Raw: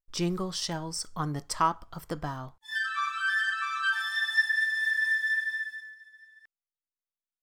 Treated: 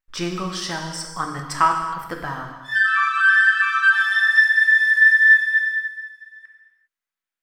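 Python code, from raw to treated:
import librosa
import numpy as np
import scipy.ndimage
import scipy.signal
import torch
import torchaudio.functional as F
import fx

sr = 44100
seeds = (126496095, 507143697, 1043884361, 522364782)

y = fx.peak_eq(x, sr, hz=1700.0, db=12.0, octaves=1.5)
y = fx.rev_gated(y, sr, seeds[0], gate_ms=430, shape='falling', drr_db=2.0)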